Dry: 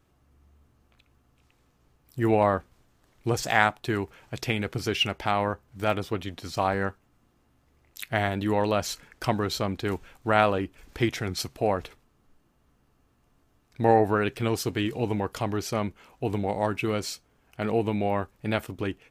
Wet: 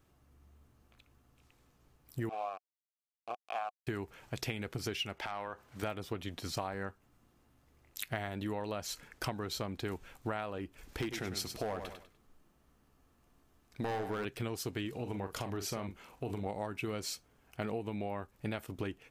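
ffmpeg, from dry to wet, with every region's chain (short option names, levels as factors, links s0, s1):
-filter_complex "[0:a]asettb=1/sr,asplit=3[s0][s1][s2];[s0]atrim=end=2.294[s3];[s1]atrim=start=2.29:end=3.87,asetpts=PTS-STARTPTS,afade=t=in:d=0.004:c=qsin,afade=t=out:st=1.576:d=0.004:c=qsin,equalizer=f=1100:t=o:w=1.8:g=3,aeval=exprs='val(0)*gte(abs(val(0)),0.126)':c=same,asplit=3[s4][s5][s6];[s4]bandpass=f=730:t=q:w=8,volume=1[s7];[s5]bandpass=f=1090:t=q:w=8,volume=0.501[s8];[s6]bandpass=f=2440:t=q:w=8,volume=0.355[s9];[s7][s8][s9]amix=inputs=3:normalize=0[s10];[s2]atrim=start=3.866[s11];[s3][s10]acrossfade=d=0.004:c1=hsin:c2=qsin[s12];[s12][s11]acrossfade=d=0.004:c1=qsin:c2=hsin,asettb=1/sr,asplit=3[s13][s14][s15];[s13]atrim=end=5.174[s16];[s14]atrim=start=5.17:end=5.83,asetpts=PTS-STARTPTS,afade=t=in:d=0.004:c=qsin,afade=t=out:st=0.656:d=0.004:c=qsin,acompressor=threshold=0.0141:ratio=8:attack=3.2:release=140:knee=1:detection=peak,asplit=2[s17][s18];[s18]highpass=f=720:p=1,volume=5.62,asoftclip=type=tanh:threshold=0.0891[s19];[s17][s19]amix=inputs=2:normalize=0,lowpass=f=4900:p=1,volume=0.501[s20];[s15]atrim=start=5.826[s21];[s16][s20]acrossfade=d=0.004:c1=hsin:c2=qsin[s22];[s22][s21]acrossfade=d=0.004:c1=qsin:c2=hsin,asettb=1/sr,asplit=3[s23][s24][s25];[s23]atrim=end=11.014[s26];[s24]atrim=start=11.01:end=14.25,asetpts=PTS-STARTPTS,afade=t=in:d=0.004:c=qsin,afade=t=out:st=3.236:d=0.004:c=qsin,equalizer=f=110:t=o:w=0.38:g=-8,volume=10.6,asoftclip=hard,volume=0.0944,aecho=1:1:99|198|297:0.316|0.0917|0.0266,atrim=end_sample=142884[s27];[s25]atrim=start=14.246[s28];[s26][s27]acrossfade=d=0.004:c1=hsin:c2=qsin[s29];[s29][s28]acrossfade=d=0.004:c1=qsin:c2=hsin,asettb=1/sr,asplit=3[s30][s31][s32];[s30]atrim=end=14.954[s33];[s31]atrim=start=14.95:end=16.46,asetpts=PTS-STARTPTS,afade=t=in:d=0.004:c=qsin,afade=t=out:st=1.506:d=0.004:c=qsin,acompressor=threshold=0.0224:ratio=2:attack=3.2:release=140:knee=1:detection=peak,asplit=2[s34][s35];[s35]adelay=41,volume=0.355[s36];[s34][s36]amix=inputs=2:normalize=0,atrim=end_sample=66591[s37];[s32]atrim=start=16.456[s38];[s33][s37]acrossfade=d=0.004:c1=hsin:c2=qsin[s39];[s39][s38]acrossfade=d=0.004:c1=qsin:c2=hsin,highshelf=f=7800:g=4,acompressor=threshold=0.0282:ratio=12,volume=0.75"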